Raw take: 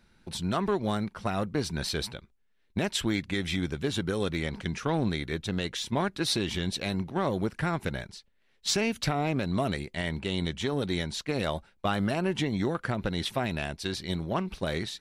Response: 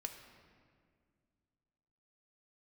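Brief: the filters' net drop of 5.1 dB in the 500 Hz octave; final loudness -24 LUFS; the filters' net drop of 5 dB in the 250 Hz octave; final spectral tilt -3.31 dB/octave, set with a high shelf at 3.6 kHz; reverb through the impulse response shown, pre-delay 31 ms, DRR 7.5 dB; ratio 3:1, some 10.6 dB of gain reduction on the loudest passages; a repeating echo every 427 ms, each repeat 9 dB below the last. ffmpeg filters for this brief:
-filter_complex "[0:a]equalizer=f=250:t=o:g=-6,equalizer=f=500:t=o:g=-5,highshelf=f=3600:g=8.5,acompressor=threshold=0.02:ratio=3,aecho=1:1:427|854|1281|1708:0.355|0.124|0.0435|0.0152,asplit=2[s0][s1];[1:a]atrim=start_sample=2205,adelay=31[s2];[s1][s2]afir=irnorm=-1:irlink=0,volume=0.562[s3];[s0][s3]amix=inputs=2:normalize=0,volume=3.76"

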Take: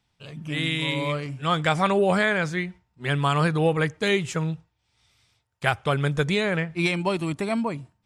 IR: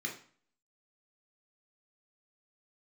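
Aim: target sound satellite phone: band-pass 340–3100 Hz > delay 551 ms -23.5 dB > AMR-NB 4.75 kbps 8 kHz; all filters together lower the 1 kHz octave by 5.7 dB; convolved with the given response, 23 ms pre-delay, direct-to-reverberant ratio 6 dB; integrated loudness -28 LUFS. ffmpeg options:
-filter_complex "[0:a]equalizer=f=1000:t=o:g=-7.5,asplit=2[s0][s1];[1:a]atrim=start_sample=2205,adelay=23[s2];[s1][s2]afir=irnorm=-1:irlink=0,volume=0.398[s3];[s0][s3]amix=inputs=2:normalize=0,highpass=340,lowpass=3100,aecho=1:1:551:0.0668,volume=1.19" -ar 8000 -c:a libopencore_amrnb -b:a 4750

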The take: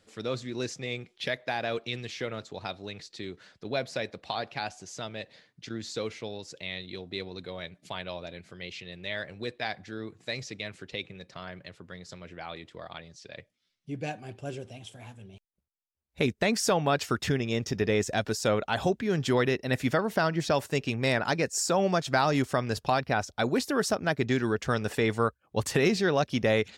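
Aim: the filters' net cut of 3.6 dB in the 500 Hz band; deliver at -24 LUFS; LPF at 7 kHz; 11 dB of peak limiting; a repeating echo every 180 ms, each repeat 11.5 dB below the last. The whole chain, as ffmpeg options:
-af "lowpass=7000,equalizer=f=500:t=o:g=-4.5,alimiter=limit=0.0668:level=0:latency=1,aecho=1:1:180|360|540:0.266|0.0718|0.0194,volume=3.98"

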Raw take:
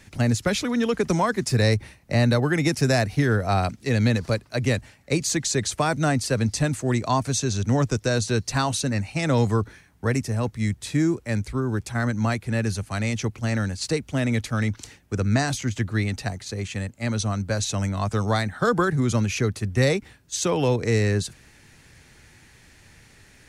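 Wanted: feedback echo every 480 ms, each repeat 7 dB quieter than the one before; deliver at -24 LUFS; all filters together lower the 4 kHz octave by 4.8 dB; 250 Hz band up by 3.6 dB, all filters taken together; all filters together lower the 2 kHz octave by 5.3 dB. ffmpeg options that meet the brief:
-af "equalizer=f=250:t=o:g=4.5,equalizer=f=2000:t=o:g=-6,equalizer=f=4000:t=o:g=-4.5,aecho=1:1:480|960|1440|1920|2400:0.447|0.201|0.0905|0.0407|0.0183,volume=0.794"

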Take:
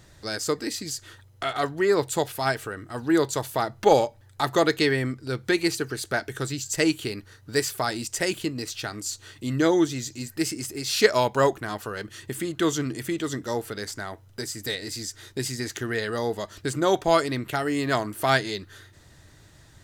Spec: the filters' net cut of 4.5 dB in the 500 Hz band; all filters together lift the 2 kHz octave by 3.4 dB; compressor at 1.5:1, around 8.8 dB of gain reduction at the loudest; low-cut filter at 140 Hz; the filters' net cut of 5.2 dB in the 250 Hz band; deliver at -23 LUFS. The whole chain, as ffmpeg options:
-af "highpass=140,equalizer=f=250:t=o:g=-5,equalizer=f=500:t=o:g=-4.5,equalizer=f=2000:t=o:g=4.5,acompressor=threshold=0.0126:ratio=1.5,volume=3.35"

